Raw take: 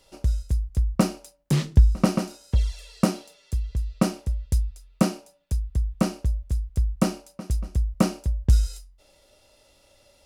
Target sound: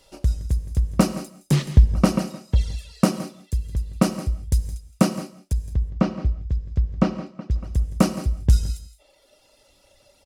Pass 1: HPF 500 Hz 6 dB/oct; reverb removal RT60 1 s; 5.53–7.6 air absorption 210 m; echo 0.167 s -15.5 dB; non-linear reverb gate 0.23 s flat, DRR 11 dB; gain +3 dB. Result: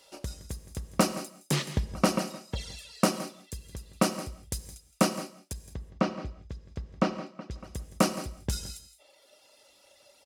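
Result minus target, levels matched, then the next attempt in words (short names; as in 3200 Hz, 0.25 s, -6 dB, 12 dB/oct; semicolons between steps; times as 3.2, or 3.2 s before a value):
500 Hz band +5.5 dB
reverb removal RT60 1 s; 5.53–7.6 air absorption 210 m; echo 0.167 s -15.5 dB; non-linear reverb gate 0.23 s flat, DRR 11 dB; gain +3 dB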